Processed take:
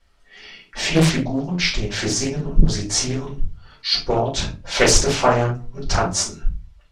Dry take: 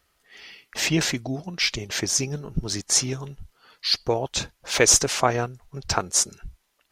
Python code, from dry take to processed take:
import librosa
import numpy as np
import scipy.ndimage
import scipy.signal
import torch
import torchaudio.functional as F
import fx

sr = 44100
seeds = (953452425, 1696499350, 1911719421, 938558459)

y = scipy.signal.sosfilt(scipy.signal.butter(2, 7300.0, 'lowpass', fs=sr, output='sos'), x)
y = fx.low_shelf(y, sr, hz=81.0, db=6.0)
y = fx.room_flutter(y, sr, wall_m=7.5, rt60_s=0.24, at=(1.78, 2.52), fade=0.02)
y = fx.room_shoebox(y, sr, seeds[0], volume_m3=150.0, walls='furnished', distance_m=4.6)
y = fx.doppler_dist(y, sr, depth_ms=0.86)
y = y * 10.0 ** (-5.5 / 20.0)